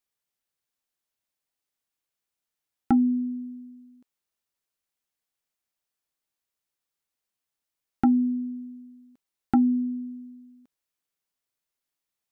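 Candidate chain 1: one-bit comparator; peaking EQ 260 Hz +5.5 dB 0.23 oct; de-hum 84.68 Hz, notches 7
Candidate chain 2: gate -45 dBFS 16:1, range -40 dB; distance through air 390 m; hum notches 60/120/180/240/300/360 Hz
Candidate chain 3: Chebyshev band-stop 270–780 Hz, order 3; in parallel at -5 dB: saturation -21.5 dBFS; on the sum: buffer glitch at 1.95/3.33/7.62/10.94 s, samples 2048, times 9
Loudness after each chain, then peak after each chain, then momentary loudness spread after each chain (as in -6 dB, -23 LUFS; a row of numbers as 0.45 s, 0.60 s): -29.5 LUFS, -26.5 LUFS, -24.0 LUFS; -26.5 dBFS, -15.0 dBFS, -10.5 dBFS; 1 LU, 18 LU, 18 LU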